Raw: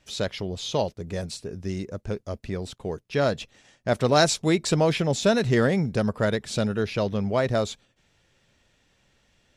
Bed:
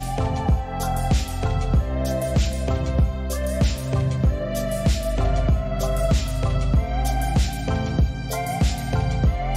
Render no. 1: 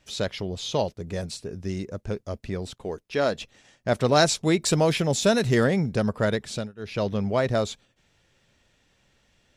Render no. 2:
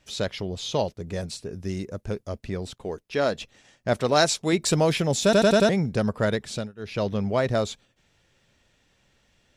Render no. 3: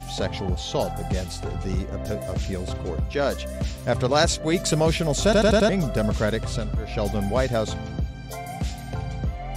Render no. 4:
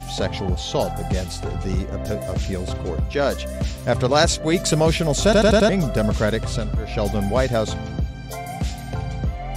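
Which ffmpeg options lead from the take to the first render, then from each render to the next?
ffmpeg -i in.wav -filter_complex "[0:a]asettb=1/sr,asplit=3[link_01][link_02][link_03];[link_01]atrim=end=2.834[link_04];[link_02]atrim=start=2.83:end=3.39,asetpts=PTS-STARTPTS,afade=type=in:duration=0.004:curve=qsin,afade=type=out:start_time=0.556:duration=0.004:curve=qsin,equalizer=frequency=120:width=1.5:gain=-10.5[link_05];[link_03]atrim=start=3.386[link_06];[link_04][link_05]acrossfade=duration=0.004:curve1=hsin:curve2=qsin[link_07];[link_07][link_06]acrossfade=duration=0.004:curve1=qsin:curve2=hsin,asettb=1/sr,asplit=3[link_08][link_09][link_10];[link_08]atrim=end=4.624[link_11];[link_09]atrim=start=4.62:end=5.64,asetpts=PTS-STARTPTS,afade=type=in:duration=0.004:curve=qsin,afade=type=out:start_time=1.016:duration=0.004:curve=qsin,highshelf=frequency=9000:gain=12[link_12];[link_10]atrim=start=5.636[link_13];[link_11][link_12]acrossfade=duration=0.004:curve1=hsin:curve2=qsin[link_14];[link_14][link_13]acrossfade=duration=0.004:curve1=qsin:curve2=hsin,asplit=3[link_15][link_16][link_17];[link_15]atrim=end=6.72,asetpts=PTS-STARTPTS,afade=type=out:start_time=6.36:duration=0.36:curve=qsin:silence=0.0630957[link_18];[link_16]atrim=start=6.72:end=6.76,asetpts=PTS-STARTPTS,volume=-24dB[link_19];[link_17]atrim=start=6.76,asetpts=PTS-STARTPTS,afade=type=in:duration=0.36:curve=qsin:silence=0.0630957[link_20];[link_18][link_19][link_20]concat=n=3:v=0:a=1" out.wav
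ffmpeg -i in.wav -filter_complex "[0:a]asettb=1/sr,asplit=3[link_01][link_02][link_03];[link_01]atrim=end=1.534[link_04];[link_02]atrim=start=1.53:end=2.28,asetpts=PTS-STARTPTS,afade=type=in:duration=0.004:curve=qsin,afade=type=out:start_time=0.746:duration=0.004:curve=qsin,equalizer=frequency=11000:width=1.4:gain=5.5[link_05];[link_03]atrim=start=2.276[link_06];[link_04][link_05]acrossfade=duration=0.004:curve1=hsin:curve2=qsin[link_07];[link_07][link_06]acrossfade=duration=0.004:curve1=qsin:curve2=hsin,asettb=1/sr,asplit=3[link_08][link_09][link_10];[link_08]atrim=end=4.014[link_11];[link_09]atrim=start=4.01:end=4.53,asetpts=PTS-STARTPTS,afade=type=in:duration=0.004:curve=qsin,afade=type=out:start_time=0.516:duration=0.004:curve=qsin,lowshelf=frequency=190:gain=-8[link_12];[link_10]atrim=start=4.526[link_13];[link_11][link_12]acrossfade=duration=0.004:curve1=hsin:curve2=qsin[link_14];[link_14][link_13]acrossfade=duration=0.004:curve1=qsin:curve2=hsin,asplit=6[link_15][link_16][link_17][link_18][link_19][link_20];[link_15]atrim=end=5.332[link_21];[link_16]atrim=start=5.238:end=5.332[link_22];[link_17]atrim=start=5.238:end=5.332[link_23];[link_18]atrim=start=5.238:end=5.332[link_24];[link_19]atrim=start=5.238:end=5.332[link_25];[link_20]atrim=start=5.688[link_26];[link_21][link_22]acrossfade=duration=0.004:curve1=hsin:curve2=hsin[link_27];[link_27][link_23]acrossfade=duration=0.004:curve1=hsin:curve2=hsin[link_28];[link_28][link_24]acrossfade=duration=0.004:curve1=hsin:curve2=hsin[link_29];[link_29][link_25]acrossfade=duration=0.004:curve1=hsin:curve2=hsin[link_30];[link_30][link_26]acrossfade=duration=0.004:curve1=hsin:curve2=hsin" out.wav
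ffmpeg -i in.wav -i bed.wav -filter_complex "[1:a]volume=-8dB[link_01];[0:a][link_01]amix=inputs=2:normalize=0" out.wav
ffmpeg -i in.wav -af "volume=3dB" out.wav

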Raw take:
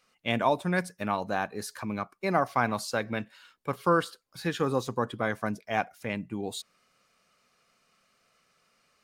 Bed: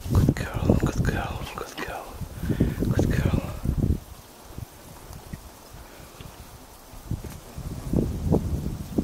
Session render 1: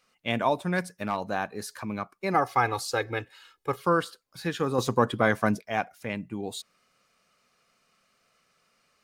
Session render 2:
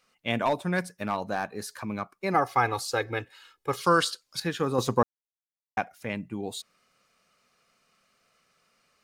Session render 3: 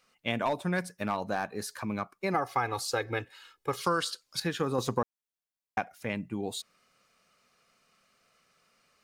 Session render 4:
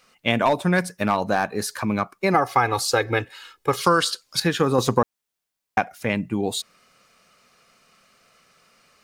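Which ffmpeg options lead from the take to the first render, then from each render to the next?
ffmpeg -i in.wav -filter_complex "[0:a]asettb=1/sr,asplit=3[link_01][link_02][link_03];[link_01]atrim=end=0.674[link_04];[link_02]atrim=start=0.67:end=1.28,asetpts=PTS-STARTPTS,afade=type=in:duration=0.004:curve=qsin,afade=type=out:start_time=0.606:duration=0.004:curve=qsin,asoftclip=type=hard:threshold=-18.5dB[link_05];[link_03]atrim=start=1.276[link_06];[link_04][link_05]acrossfade=duration=0.004:curve1=hsin:curve2=qsin[link_07];[link_07][link_06]acrossfade=duration=0.004:curve1=qsin:curve2=hsin,asettb=1/sr,asplit=3[link_08][link_09][link_10];[link_08]atrim=end=2.344[link_11];[link_09]atrim=start=2.34:end=3.8,asetpts=PTS-STARTPTS,afade=type=in:duration=0.004:curve=qsin,afade=type=out:start_time=1.456:duration=0.004:curve=qsin,aecho=1:1:2.4:0.93,atrim=end_sample=64386[link_12];[link_10]atrim=start=3.796[link_13];[link_11][link_12]acrossfade=duration=0.004:curve1=hsin:curve2=qsin[link_14];[link_14][link_13]acrossfade=duration=0.004:curve1=qsin:curve2=hsin,asettb=1/sr,asplit=3[link_15][link_16][link_17];[link_15]atrim=end=4.784[link_18];[link_16]atrim=start=4.78:end=5.62,asetpts=PTS-STARTPTS,afade=type=in:duration=0.004:curve=qsin,afade=type=out:start_time=0.836:duration=0.004:curve=qsin,acontrast=77[link_19];[link_17]atrim=start=5.616[link_20];[link_18][link_19]acrossfade=duration=0.004:curve1=hsin:curve2=qsin[link_21];[link_21][link_20]acrossfade=duration=0.004:curve1=qsin:curve2=hsin" out.wav
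ffmpeg -i in.wav -filter_complex "[0:a]asettb=1/sr,asplit=3[link_01][link_02][link_03];[link_01]atrim=end=0.454[link_04];[link_02]atrim=start=0.45:end=2.15,asetpts=PTS-STARTPTS,afade=type=in:duration=0.004:curve=qsin,afade=type=out:start_time=1.696:duration=0.004:curve=qsin,asoftclip=type=hard:threshold=-18.5dB[link_05];[link_03]atrim=start=2.146[link_06];[link_04][link_05]acrossfade=duration=0.004:curve1=hsin:curve2=qsin[link_07];[link_07][link_06]acrossfade=duration=0.004:curve1=qsin:curve2=hsin,asettb=1/sr,asplit=3[link_08][link_09][link_10];[link_08]atrim=end=3.724[link_11];[link_09]atrim=start=3.72:end=4.4,asetpts=PTS-STARTPTS,afade=type=in:duration=0.004:curve=qsin,afade=type=out:start_time=0.676:duration=0.004:curve=qsin,equalizer=frequency=5600:width_type=o:width=2.5:gain=14.5[link_12];[link_10]atrim=start=4.396[link_13];[link_11][link_12]acrossfade=duration=0.004:curve1=hsin:curve2=qsin[link_14];[link_14][link_13]acrossfade=duration=0.004:curve1=qsin:curve2=hsin,asplit=3[link_15][link_16][link_17];[link_15]atrim=end=5.03,asetpts=PTS-STARTPTS,afade=type=out:start_time=5.026:duration=0.004:curve=hsin[link_18];[link_16]atrim=start=5.03:end=5.77,asetpts=PTS-STARTPTS,volume=0[link_19];[link_17]atrim=start=5.77,asetpts=PTS-STARTPTS,afade=type=in:duration=0.004:curve=hsin[link_20];[link_18][link_19][link_20]concat=n=3:v=0:a=1" out.wav
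ffmpeg -i in.wav -af "acompressor=threshold=-26dB:ratio=3" out.wav
ffmpeg -i in.wav -af "volume=10dB" out.wav

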